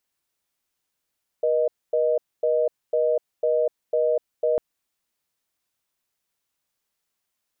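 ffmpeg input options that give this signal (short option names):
-f lavfi -i "aevalsrc='0.0891*(sin(2*PI*480*t)+sin(2*PI*620*t))*clip(min(mod(t,0.5),0.25-mod(t,0.5))/0.005,0,1)':d=3.15:s=44100"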